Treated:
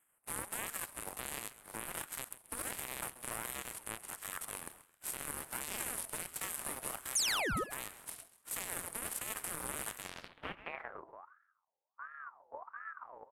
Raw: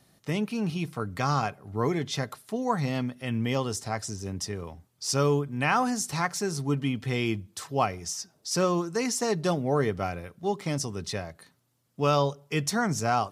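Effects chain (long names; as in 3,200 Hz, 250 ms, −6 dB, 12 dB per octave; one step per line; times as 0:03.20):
compressing power law on the bin magnitudes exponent 0.32
elliptic band-stop filter 1,900–9,700 Hz
parametric band 3,000 Hz −14 dB 1.3 octaves
downward compressor, threshold −31 dBFS, peak gain reduction 9 dB
brickwall limiter −29.5 dBFS, peak gain reduction 10.5 dB
harmonic generator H 3 −9 dB, 4 −21 dB, 7 −35 dB, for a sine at −29.5 dBFS
sound drawn into the spectrogram fall, 0:07.15–0:07.64, 340–9,000 Hz −37 dBFS
echo with shifted repeats 133 ms, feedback 34%, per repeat −57 Hz, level −15 dB
low-pass filter sweep 10,000 Hz → 180 Hz, 0:09.99–0:11.22
ring modulator whose carrier an LFO sweeps 1,100 Hz, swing 40%, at 1.4 Hz
level +5.5 dB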